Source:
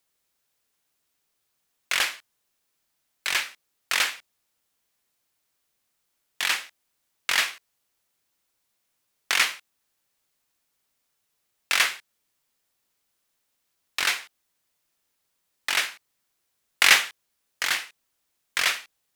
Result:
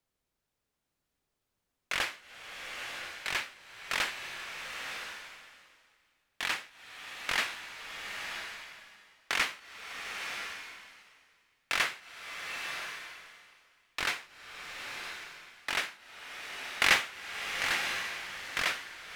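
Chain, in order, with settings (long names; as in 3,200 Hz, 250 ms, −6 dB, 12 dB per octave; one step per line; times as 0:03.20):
spectral tilt −2.5 dB per octave
slow-attack reverb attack 990 ms, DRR 4 dB
level −4.5 dB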